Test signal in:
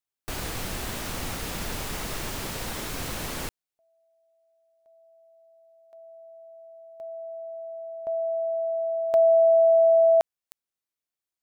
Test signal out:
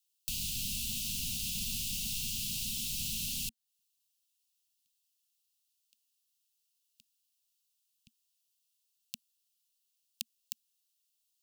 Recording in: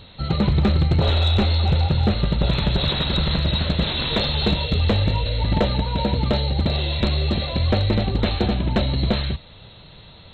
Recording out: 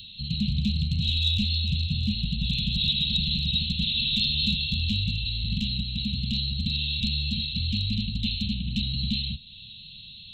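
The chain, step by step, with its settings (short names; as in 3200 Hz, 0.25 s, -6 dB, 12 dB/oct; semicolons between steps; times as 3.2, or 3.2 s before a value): Chebyshev band-stop 230–2700 Hz, order 5; tone controls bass -8 dB, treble +2 dB; mismatched tape noise reduction encoder only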